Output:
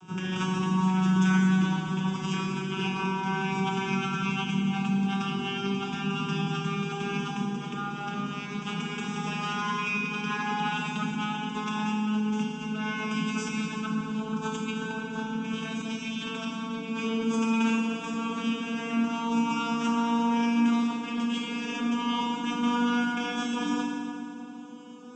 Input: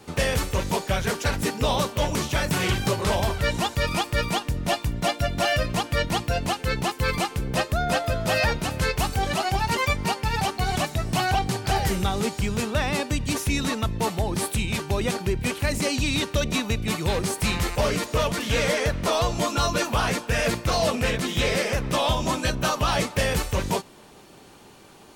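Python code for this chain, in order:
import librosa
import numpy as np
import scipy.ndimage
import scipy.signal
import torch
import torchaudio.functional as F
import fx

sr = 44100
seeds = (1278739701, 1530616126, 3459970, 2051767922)

y = fx.vocoder_glide(x, sr, note=54, semitones=5)
y = fx.dynamic_eq(y, sr, hz=2500.0, q=0.85, threshold_db=-48.0, ratio=4.0, max_db=8)
y = fx.over_compress(y, sr, threshold_db=-31.0, ratio=-1.0)
y = fx.fixed_phaser(y, sr, hz=2900.0, stages=8)
y = fx.rev_fdn(y, sr, rt60_s=2.5, lf_ratio=1.45, hf_ratio=0.7, size_ms=19.0, drr_db=-3.5)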